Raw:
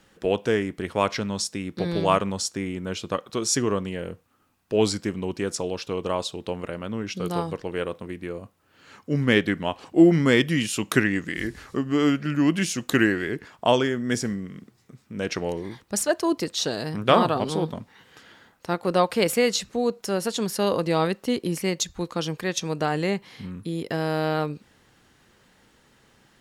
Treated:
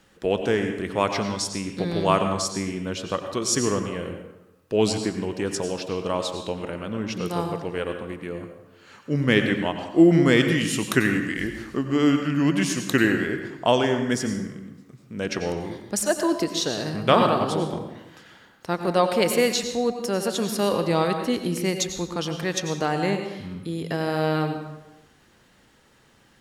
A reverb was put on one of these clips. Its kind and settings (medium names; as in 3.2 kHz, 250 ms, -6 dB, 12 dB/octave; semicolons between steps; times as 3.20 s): plate-style reverb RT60 0.93 s, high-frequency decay 0.65×, pre-delay 80 ms, DRR 6 dB